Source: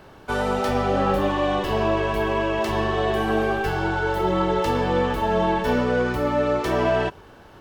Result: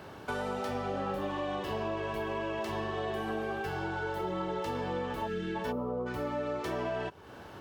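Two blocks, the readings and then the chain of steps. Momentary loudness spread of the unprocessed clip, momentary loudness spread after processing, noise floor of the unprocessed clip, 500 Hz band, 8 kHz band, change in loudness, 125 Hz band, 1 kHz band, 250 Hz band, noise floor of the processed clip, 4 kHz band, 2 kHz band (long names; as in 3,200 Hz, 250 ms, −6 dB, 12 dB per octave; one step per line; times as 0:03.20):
2 LU, 1 LU, −47 dBFS, −12.5 dB, −11.5 dB, −12.5 dB, −13.0 dB, −12.5 dB, −12.0 dB, −48 dBFS, −12.0 dB, −12.0 dB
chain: gain on a spectral selection 0:05.72–0:06.07, 1,400–10,000 Hz −23 dB
high-pass filter 71 Hz
gain on a spectral selection 0:05.28–0:05.55, 480–1,300 Hz −23 dB
downward compressor 3 to 1, threshold −36 dBFS, peak gain reduction 14 dB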